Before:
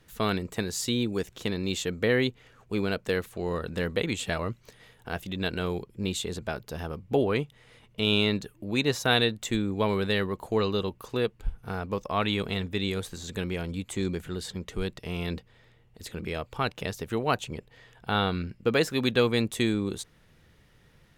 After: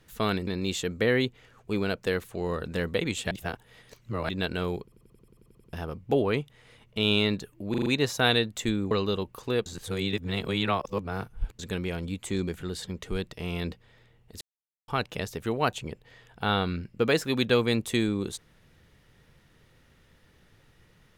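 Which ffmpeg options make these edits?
-filter_complex "[0:a]asplit=23[a][b][c][d][e][f][g][h][i][j][k][l][m][n][o][p][q][r][s][t][u][v][w];[a]atrim=end=0.472[x];[b]atrim=start=1.488:end=4.332[y];[c]atrim=start=4.328:end=5.312,asetpts=PTS-STARTPTS,areverse[z];[d]atrim=start=5.308:end=5.942[aa];[e]atrim=start=5.848:end=5.942[ab];[f]atrim=start=5.848:end=5.942[ac];[g]atrim=start=5.848:end=5.942[ad];[h]atrim=start=5.848:end=5.942[ae];[i]atrim=start=5.848:end=5.942[af];[j]atrim=start=5.848:end=5.942[ag];[k]atrim=start=5.848:end=5.942[ah];[l]atrim=start=5.848:end=5.942[ai];[m]atrim=start=5.848:end=5.942[aj];[n]atrim=start=6.748:end=8.762[ak];[o]atrim=start=8.718:end=8.762[al];[p]atrim=start=8.718:end=8.762[am];[q]atrim=start=8.718:end=8.762[an];[r]atrim=start=8.718:end=9.772[ao];[s]atrim=start=10.568:end=11.322[ap];[t]atrim=start=11.318:end=13.252,asetpts=PTS-STARTPTS,areverse[aq];[u]atrim=start=13.248:end=16.07,asetpts=PTS-STARTPTS,afade=t=out:st=2.818:d=0.004:c=hsin[ar];[v]atrim=start=16.07:end=16.54,asetpts=PTS-STARTPTS,volume=0[as];[w]atrim=start=16.54,asetpts=PTS-STARTPTS,afade=t=in:d=0.004:c=hsin[at];[x][y]acrossfade=d=0.004:c1=hsin:c2=hsin[au];[au][z]acrossfade=d=0.004:c1=hsin:c2=hsin[av];[av][aa]acrossfade=d=0.004:c1=hsin:c2=hsin[aw];[aw][ab]acrossfade=d=0.004:c1=hsin:c2=hsin[ax];[ax][ac]acrossfade=d=0.004:c1=hsin:c2=hsin[ay];[ay][ad]acrossfade=d=0.004:c1=hsin:c2=hsin[az];[az][ae]acrossfade=d=0.004:c1=hsin:c2=hsin[ba];[ba][af]acrossfade=d=0.004:c1=hsin:c2=hsin[bb];[bb][ag]acrossfade=d=0.004:c1=hsin:c2=hsin[bc];[bc][ah]acrossfade=d=0.004:c1=hsin:c2=hsin[bd];[bd][ai]acrossfade=d=0.004:c1=hsin:c2=hsin[be];[be][aj]acrossfade=d=0.004:c1=hsin:c2=hsin[bf];[bf][ak]acrossfade=d=0.004:c1=hsin:c2=hsin[bg];[bg][al]acrossfade=d=0.004:c1=hsin:c2=hsin[bh];[bh][am]acrossfade=d=0.004:c1=hsin:c2=hsin[bi];[bi][an]acrossfade=d=0.004:c1=hsin:c2=hsin[bj];[bj][ao]acrossfade=d=0.004:c1=hsin:c2=hsin[bk];[bk][ap]acrossfade=d=0.004:c1=hsin:c2=hsin[bl];[bl][aq]acrossfade=d=0.004:c1=hsin:c2=hsin[bm];[ar][as][at]concat=n=3:v=0:a=1[bn];[bm][bn]acrossfade=d=0.004:c1=hsin:c2=hsin"

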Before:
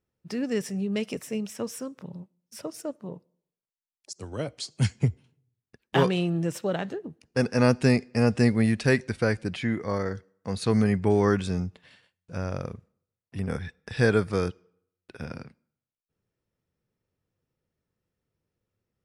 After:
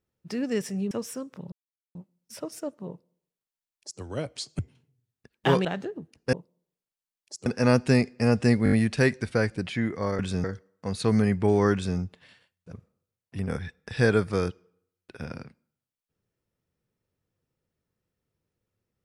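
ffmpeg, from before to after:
-filter_complex "[0:a]asplit=14[a][b][c][d][e][f][g][h][i][j][k][l][m][n];[a]atrim=end=0.912[o];[b]atrim=start=1.558:end=2.17,asetpts=PTS-STARTPTS,afade=t=out:st=0.608:d=0.004:c=hsin,apad=pad_dur=0.43[p];[c]atrim=start=2.17:end=4.812,asetpts=PTS-STARTPTS,afade=t=in:d=0.004:c=hsin[q];[d]atrim=start=5.078:end=6.142[r];[e]atrim=start=6.728:end=7.412[s];[f]atrim=start=3.098:end=4.232[t];[g]atrim=start=7.408:end=8.612[u];[h]atrim=start=8.588:end=8.612[v];[i]atrim=start=8.588:end=8.612[w];[j]atrim=start=8.588:end=8.612[x];[k]atrim=start=8.588:end=10.062[y];[l]atrim=start=11.348:end=11.602[z];[m]atrim=start=10.058:end=12.342[aa];[n]atrim=start=12.718[ab];[p][q]concat=n=2:v=0:a=1[ac];[o][ac]acrossfade=d=0.004:c1=hsin:c2=hsin[ad];[ad][r]acrossfade=d=0.004:c1=hsin:c2=hsin[ae];[ae][s]acrossfade=d=0.004:c1=hsin:c2=hsin[af];[af][t]acrossfade=d=0.004:c1=hsin:c2=hsin[ag];[ag][u]acrossfade=d=0.004:c1=hsin:c2=hsin[ah];[ah][v]acrossfade=d=0.004:c1=hsin:c2=hsin[ai];[ai][w]acrossfade=d=0.004:c1=hsin:c2=hsin[aj];[aj][x]acrossfade=d=0.004:c1=hsin:c2=hsin[ak];[ak][y]acrossfade=d=0.004:c1=hsin:c2=hsin[al];[al][z]acrossfade=d=0.004:c1=hsin:c2=hsin[am];[am][aa]acrossfade=d=0.004:c1=hsin:c2=hsin[an];[an][ab]acrossfade=d=0.004:c1=hsin:c2=hsin"

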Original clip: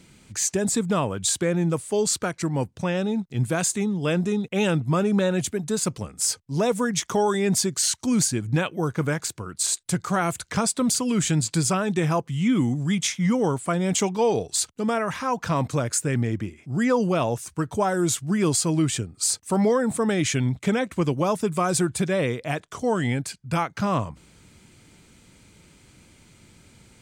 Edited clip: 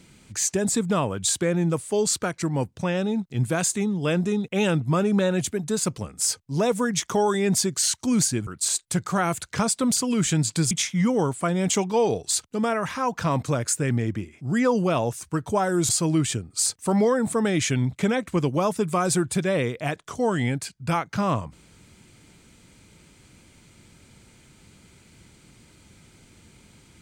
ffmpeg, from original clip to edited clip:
-filter_complex "[0:a]asplit=4[a][b][c][d];[a]atrim=end=8.472[e];[b]atrim=start=9.448:end=11.692[f];[c]atrim=start=12.958:end=18.142[g];[d]atrim=start=18.528[h];[e][f]acrossfade=d=0.004:c1=hsin:c2=hsin[i];[i][g]acrossfade=d=0.004:c1=hsin:c2=hsin[j];[j][h]acrossfade=d=0.004:c1=hsin:c2=hsin"

